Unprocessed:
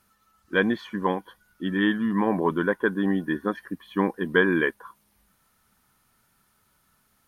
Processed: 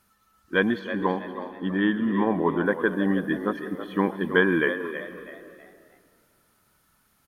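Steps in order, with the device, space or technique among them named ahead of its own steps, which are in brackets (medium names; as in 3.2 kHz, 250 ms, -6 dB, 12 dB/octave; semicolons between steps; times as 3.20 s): 0.79–2.66 s: treble shelf 3.4 kHz -9.5 dB; compressed reverb return (on a send at -10.5 dB: reverberation RT60 2.0 s, pre-delay 110 ms + compression, threshold -25 dBFS, peak gain reduction 8.5 dB); on the sum: frequency-shifting echo 324 ms, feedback 34%, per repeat +72 Hz, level -11 dB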